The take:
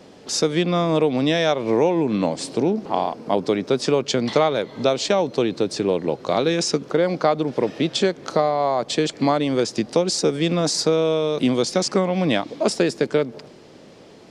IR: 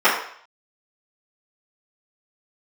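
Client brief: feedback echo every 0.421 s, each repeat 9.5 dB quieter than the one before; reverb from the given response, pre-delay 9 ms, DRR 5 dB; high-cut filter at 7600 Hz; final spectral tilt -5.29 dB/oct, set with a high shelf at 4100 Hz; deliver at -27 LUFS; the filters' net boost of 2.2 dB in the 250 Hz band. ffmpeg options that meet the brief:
-filter_complex "[0:a]lowpass=7.6k,equalizer=f=250:t=o:g=3,highshelf=f=4.1k:g=-6.5,aecho=1:1:421|842|1263|1684:0.335|0.111|0.0365|0.012,asplit=2[a][b];[1:a]atrim=start_sample=2205,adelay=9[c];[b][c]afir=irnorm=-1:irlink=0,volume=-29dB[d];[a][d]amix=inputs=2:normalize=0,volume=-7.5dB"

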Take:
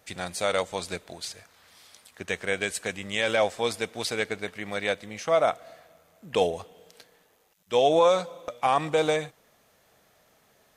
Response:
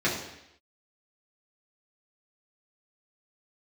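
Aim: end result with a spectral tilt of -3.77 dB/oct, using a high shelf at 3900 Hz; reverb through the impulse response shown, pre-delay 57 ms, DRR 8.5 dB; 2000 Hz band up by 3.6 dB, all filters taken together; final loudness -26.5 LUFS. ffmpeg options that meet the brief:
-filter_complex "[0:a]equalizer=f=2k:t=o:g=5.5,highshelf=f=3.9k:g=-4.5,asplit=2[a][b];[1:a]atrim=start_sample=2205,adelay=57[c];[b][c]afir=irnorm=-1:irlink=0,volume=-21.5dB[d];[a][d]amix=inputs=2:normalize=0,volume=-1dB"

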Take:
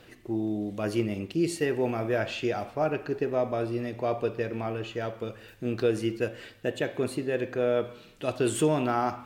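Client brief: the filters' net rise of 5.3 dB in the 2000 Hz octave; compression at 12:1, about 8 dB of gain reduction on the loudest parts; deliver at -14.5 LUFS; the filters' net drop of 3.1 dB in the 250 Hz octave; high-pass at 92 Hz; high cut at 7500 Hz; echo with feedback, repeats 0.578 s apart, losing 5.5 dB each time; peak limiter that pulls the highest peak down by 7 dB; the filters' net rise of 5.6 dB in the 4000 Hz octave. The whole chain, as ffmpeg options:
-af "highpass=92,lowpass=7.5k,equalizer=f=250:t=o:g=-4.5,equalizer=f=2k:t=o:g=5.5,equalizer=f=4k:t=o:g=5.5,acompressor=threshold=-29dB:ratio=12,alimiter=level_in=1dB:limit=-24dB:level=0:latency=1,volume=-1dB,aecho=1:1:578|1156|1734|2312|2890|3468|4046:0.531|0.281|0.149|0.079|0.0419|0.0222|0.0118,volume=21dB"

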